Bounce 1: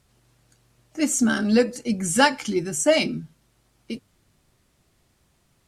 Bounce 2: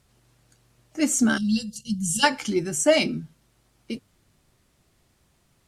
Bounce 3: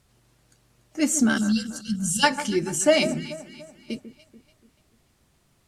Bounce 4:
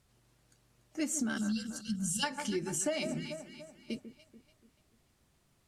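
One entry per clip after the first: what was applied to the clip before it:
spectral gain 1.37–2.23, 230–2700 Hz -28 dB
echo with dull and thin repeats by turns 0.145 s, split 1600 Hz, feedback 63%, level -11 dB
compressor 12:1, threshold -23 dBFS, peak gain reduction 11 dB; gain -6.5 dB

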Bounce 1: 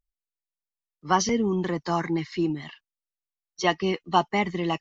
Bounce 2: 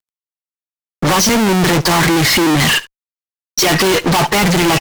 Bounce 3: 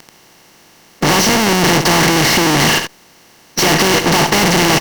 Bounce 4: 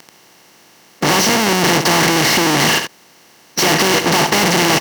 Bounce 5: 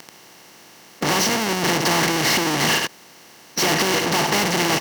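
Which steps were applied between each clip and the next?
power-law curve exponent 0.7; fuzz box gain 46 dB, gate -54 dBFS; echo 71 ms -20 dB; gain +1.5 dB
per-bin compression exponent 0.4; gain -5 dB
HPF 150 Hz 6 dB/oct; gain -1 dB
limiter -12.5 dBFS, peak gain reduction 10.5 dB; gain +1 dB

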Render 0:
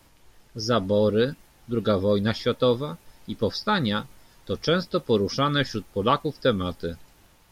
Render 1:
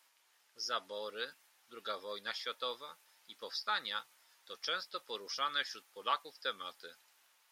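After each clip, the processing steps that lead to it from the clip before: HPF 1100 Hz 12 dB/oct; gain -8 dB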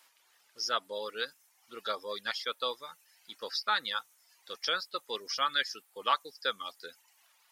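reverb removal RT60 0.74 s; gain +6 dB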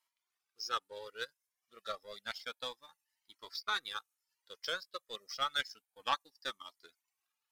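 power-law curve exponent 1.4; cascading flanger rising 0.3 Hz; gain +3 dB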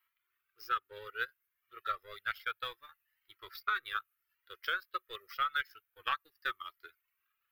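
EQ curve 110 Hz 0 dB, 220 Hz -29 dB, 370 Hz -3 dB, 540 Hz -13 dB, 870 Hz -16 dB, 1300 Hz +3 dB, 2800 Hz -3 dB, 5800 Hz -23 dB, 8800 Hz -19 dB, 13000 Hz +1 dB; compressor 4:1, threshold -38 dBFS, peak gain reduction 8.5 dB; gain +8 dB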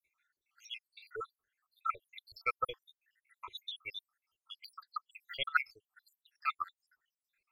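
random spectral dropouts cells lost 84%; LPF 8200 Hz 12 dB/oct; gain +9 dB

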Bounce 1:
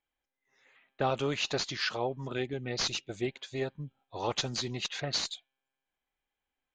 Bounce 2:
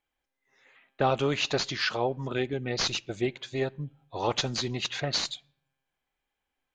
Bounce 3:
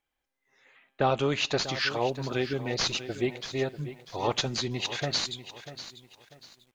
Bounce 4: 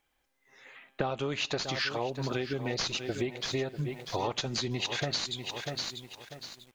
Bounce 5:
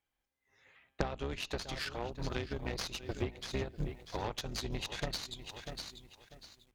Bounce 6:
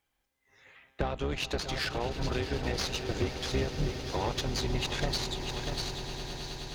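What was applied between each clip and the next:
high shelf 6800 Hz -6 dB; on a send at -23.5 dB: reverb RT60 0.65 s, pre-delay 6 ms; on the sum: gain +4.5 dB
lo-fi delay 0.643 s, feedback 35%, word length 9-bit, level -13 dB
compressor 10:1, threshold -36 dBFS, peak gain reduction 16.5 dB; gain +7.5 dB
octaver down 2 oct, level +3 dB; added harmonics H 4 -7 dB, 5 -23 dB, 6 -11 dB, 7 -18 dB, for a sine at -12 dBFS; gain -5 dB
soft clip -26.5 dBFS, distortion -14 dB; on a send: swelling echo 0.105 s, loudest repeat 8, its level -16.5 dB; on the sum: gain +7 dB

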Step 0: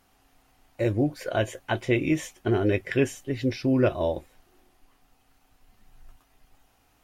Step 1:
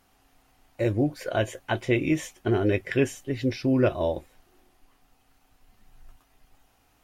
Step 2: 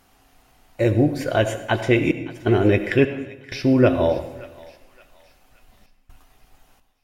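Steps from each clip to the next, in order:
nothing audible
step gate "xxxxxxxxx.xxx..x" 64 bpm -60 dB; thinning echo 0.572 s, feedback 53%, high-pass 1200 Hz, level -17 dB; reverb RT60 1.0 s, pre-delay 62 ms, DRR 10 dB; gain +6 dB

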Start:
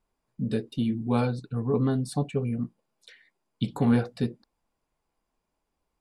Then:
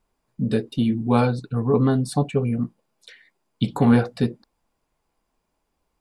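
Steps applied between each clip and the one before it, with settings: dynamic EQ 1000 Hz, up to +3 dB, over -44 dBFS, Q 0.76; gain +5.5 dB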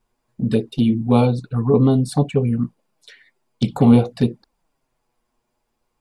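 envelope flanger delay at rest 8.4 ms, full sweep at -16.5 dBFS; gain +4.5 dB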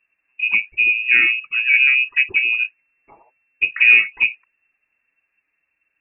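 inverted band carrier 2700 Hz

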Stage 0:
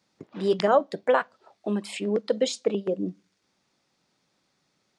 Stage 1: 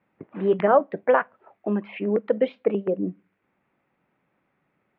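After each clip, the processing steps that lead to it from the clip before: steep low-pass 2500 Hz 36 dB/oct; gain +2.5 dB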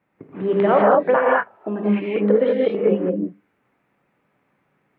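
non-linear reverb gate 0.23 s rising, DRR -4 dB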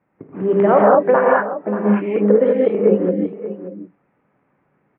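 Gaussian blur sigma 3.7 samples; echo 0.584 s -13 dB; gain +3.5 dB

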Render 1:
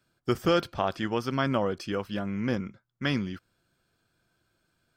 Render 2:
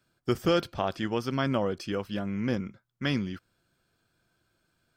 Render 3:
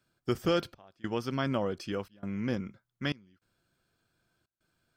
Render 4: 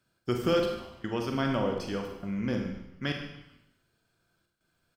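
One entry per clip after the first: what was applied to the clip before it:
dynamic EQ 1200 Hz, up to -3 dB, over -41 dBFS, Q 0.91
step gate "xxxxx..xxxxxxx.x" 101 bpm -24 dB; gain -3 dB
frequency-shifting echo 0.148 s, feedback 41%, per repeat -130 Hz, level -18 dB; Schroeder reverb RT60 0.81 s, combs from 33 ms, DRR 2.5 dB

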